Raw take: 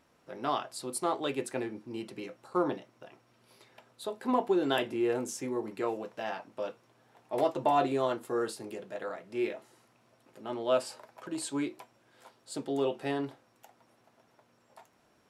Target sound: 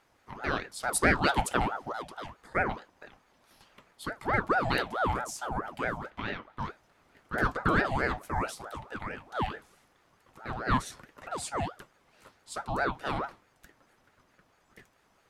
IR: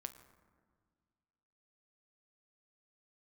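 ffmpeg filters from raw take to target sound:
-filter_complex "[0:a]asettb=1/sr,asplit=3[s0][s1][s2];[s0]atrim=end=0.834[s3];[s1]atrim=start=0.83:end=1.93,asetpts=PTS-STARTPTS,afade=t=in:d=0.004:c=qsin,afade=t=out:st=1.096:d=0.004:c=qsin,acontrast=72[s4];[s2]atrim=start=1.926[s5];[s3][s4]acrossfade=d=0.004:c1=hsin:c2=qsin[s6];[s6][s5]acrossfade=d=0.004:c1=qsin:c2=hsin,asettb=1/sr,asplit=3[s7][s8][s9];[s7]atrim=end=6.104[s10];[s8]atrim=start=6.1:end=6.59,asetpts=PTS-STARTPTS,afade=t=in:d=0.004:c=qsin,afade=t=out:st=0.486:d=0.004:c=qsin,highshelf=f=4000:t=q:w=1.5:g=-8.5[s11];[s9]atrim=start=6.586[s12];[s10][s11]acrossfade=d=0.004:c1=hsin:c2=qsin[s13];[s13][s12]acrossfade=d=0.004:c1=qsin:c2=hsin,aeval=exprs='val(0)*sin(2*PI*750*n/s+750*0.5/4.6*sin(2*PI*4.6*n/s))':c=same,volume=1.41"

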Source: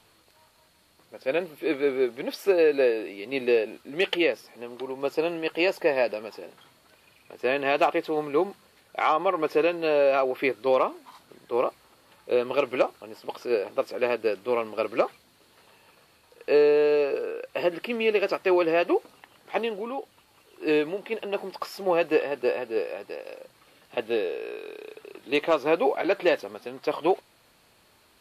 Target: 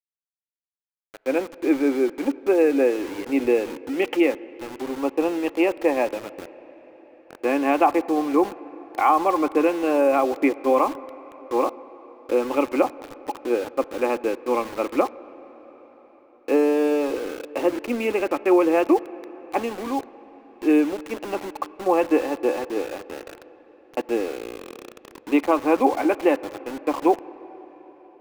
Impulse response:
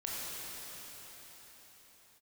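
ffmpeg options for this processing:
-filter_complex "[0:a]highpass=f=240:w=0.5412,highpass=f=240:w=1.3066,equalizer=f=280:t=q:w=4:g=8,equalizer=f=430:t=q:w=4:g=-9,equalizer=f=630:t=q:w=4:g=-8,equalizer=f=890:t=q:w=4:g=6,equalizer=f=1300:t=q:w=4:g=-5,equalizer=f=1800:t=q:w=4:g=-9,lowpass=f=2100:w=0.5412,lowpass=f=2100:w=1.3066,bandreject=f=920:w=6.8,aeval=exprs='val(0)*gte(abs(val(0)),0.01)':c=same,asplit=2[s0][s1];[1:a]atrim=start_sample=2205,lowpass=2700[s2];[s1][s2]afir=irnorm=-1:irlink=0,volume=0.106[s3];[s0][s3]amix=inputs=2:normalize=0,volume=2.24"

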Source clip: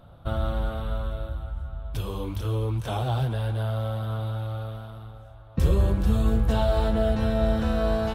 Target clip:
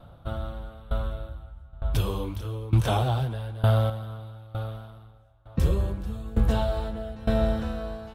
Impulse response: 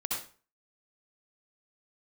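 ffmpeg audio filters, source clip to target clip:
-filter_complex "[0:a]asettb=1/sr,asplit=3[s0][s1][s2];[s0]atrim=end=1.734[s3];[s1]atrim=start=1.73:end=3.9,asetpts=PTS-STARTPTS,afade=t=in:d=0.004:c=qsin,afade=t=out:st=2.166:d=0.004:c=qsin,acontrast=62[s4];[s2]atrim=start=3.896[s5];[s3][s4]acrossfade=d=0.004:c1=hsin:c2=qsin[s6];[s6][s5]acrossfade=d=0.004:c1=qsin:c2=hsin,aeval=exprs='val(0)*pow(10,-20*if(lt(mod(1.1*n/s,1),2*abs(1.1)/1000),1-mod(1.1*n/s,1)/(2*abs(1.1)/1000),(mod(1.1*n/s,1)-2*abs(1.1)/1000)/(1-2*abs(1.1)/1000))/20)':c=same,volume=1.41"

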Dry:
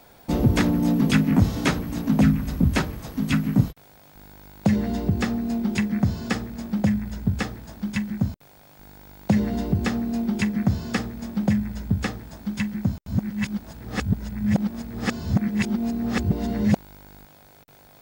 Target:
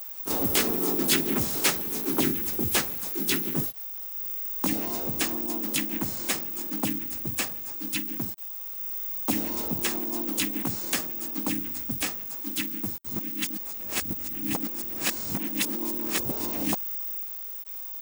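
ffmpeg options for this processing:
-filter_complex "[0:a]acrusher=bits=8:mode=log:mix=0:aa=0.000001,asplit=4[s0][s1][s2][s3];[s1]asetrate=55563,aresample=44100,atempo=0.793701,volume=0.501[s4];[s2]asetrate=58866,aresample=44100,atempo=0.749154,volume=0.794[s5];[s3]asetrate=66075,aresample=44100,atempo=0.66742,volume=0.794[s6];[s0][s4][s5][s6]amix=inputs=4:normalize=0,aemphasis=mode=production:type=riaa,volume=0.422"

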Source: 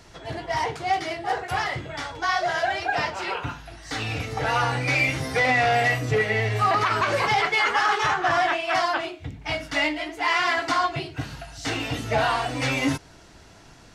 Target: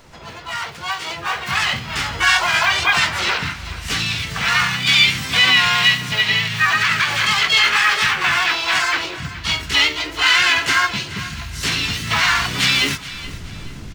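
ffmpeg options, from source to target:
-filter_complex "[0:a]asplit=4[s0][s1][s2][s3];[s1]asetrate=55563,aresample=44100,atempo=0.793701,volume=0.447[s4];[s2]asetrate=66075,aresample=44100,atempo=0.66742,volume=0.891[s5];[s3]asetrate=88200,aresample=44100,atempo=0.5,volume=0.398[s6];[s0][s4][s5][s6]amix=inputs=4:normalize=0,acrusher=bits=8:mode=log:mix=0:aa=0.000001,asubboost=boost=5.5:cutoff=230,acrossover=split=1300[s7][s8];[s7]acompressor=threshold=0.0158:ratio=8[s9];[s9][s8]amix=inputs=2:normalize=0,equalizer=f=11000:t=o:w=1.1:g=-7.5,asplit=2[s10][s11];[s11]aecho=0:1:426|852|1278:0.158|0.0586|0.0217[s12];[s10][s12]amix=inputs=2:normalize=0,dynaudnorm=f=130:g=21:m=3.76,bandreject=f=60:t=h:w=6,bandreject=f=120:t=h:w=6,bandreject=f=180:t=h:w=6,bandreject=f=240:t=h:w=6,bandreject=f=300:t=h:w=6"

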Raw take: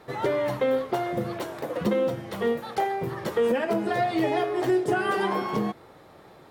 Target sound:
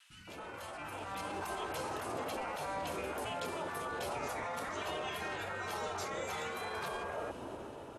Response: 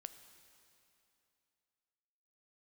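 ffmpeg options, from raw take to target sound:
-filter_complex "[0:a]afftfilt=real='re*lt(hypot(re,im),0.0794)':imag='im*lt(hypot(re,im),0.0794)':win_size=1024:overlap=0.75,acrossover=split=250|540[s0][s1][s2];[s0]acompressor=threshold=0.001:ratio=4[s3];[s1]acompressor=threshold=0.002:ratio=4[s4];[s2]acompressor=threshold=0.00794:ratio=4[s5];[s3][s4][s5]amix=inputs=3:normalize=0,alimiter=level_in=5.62:limit=0.0631:level=0:latency=1:release=25,volume=0.178,dynaudnorm=f=120:g=11:m=2.24,atempo=1.1,acrossover=split=260|2600[s6][s7][s8];[s6]adelay=70[s9];[s7]adelay=200[s10];[s9][s10][s8]amix=inputs=3:normalize=0,asetrate=32667,aresample=44100,volume=1.33"

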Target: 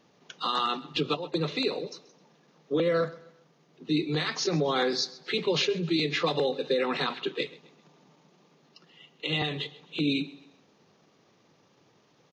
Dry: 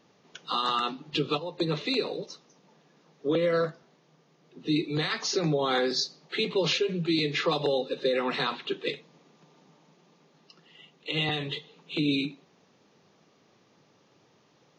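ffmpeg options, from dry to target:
-af "atempo=1.2,aecho=1:1:131|262|393:0.1|0.039|0.0152"

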